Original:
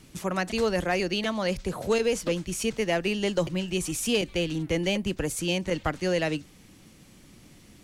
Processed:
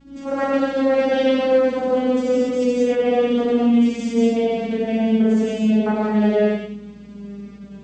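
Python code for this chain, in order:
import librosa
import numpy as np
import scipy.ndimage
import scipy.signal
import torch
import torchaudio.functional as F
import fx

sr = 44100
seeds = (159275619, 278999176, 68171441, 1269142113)

p1 = fx.vocoder_glide(x, sr, note=61, semitones=-6)
p2 = fx.high_shelf(p1, sr, hz=4000.0, db=-9.5)
p3 = fx.over_compress(p2, sr, threshold_db=-33.0, ratio=-1.0)
p4 = p2 + (p3 * librosa.db_to_amplitude(2.5))
p5 = fx.add_hum(p4, sr, base_hz=60, snr_db=27)
p6 = p5 + fx.echo_single(p5, sr, ms=94, db=-8.5, dry=0)
p7 = fx.rev_gated(p6, sr, seeds[0], gate_ms=310, shape='flat', drr_db=-7.0)
p8 = fx.attack_slew(p7, sr, db_per_s=190.0)
y = p8 * librosa.db_to_amplitude(-2.5)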